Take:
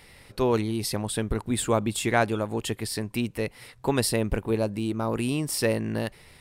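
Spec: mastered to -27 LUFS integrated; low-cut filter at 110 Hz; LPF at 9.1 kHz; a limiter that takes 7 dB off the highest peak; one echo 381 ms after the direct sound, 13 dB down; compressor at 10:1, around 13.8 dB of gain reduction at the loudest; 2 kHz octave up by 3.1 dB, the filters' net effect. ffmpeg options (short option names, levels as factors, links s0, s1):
-af "highpass=110,lowpass=9100,equalizer=f=2000:t=o:g=4,acompressor=threshold=0.0282:ratio=10,alimiter=level_in=1.41:limit=0.0631:level=0:latency=1,volume=0.708,aecho=1:1:381:0.224,volume=3.35"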